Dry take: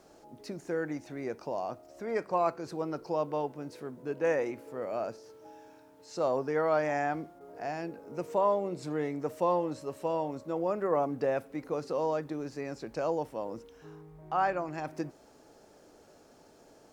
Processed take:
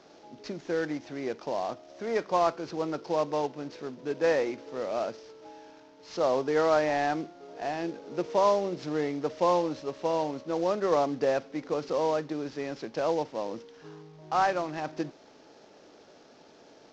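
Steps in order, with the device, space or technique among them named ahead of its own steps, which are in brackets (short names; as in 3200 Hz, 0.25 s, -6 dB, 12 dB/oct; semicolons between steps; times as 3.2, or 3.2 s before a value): 6.42–8.29 dynamic EQ 360 Hz, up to +4 dB, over -49 dBFS, Q 3.7; early wireless headset (HPF 150 Hz 12 dB/oct; CVSD 32 kbps); gain +3.5 dB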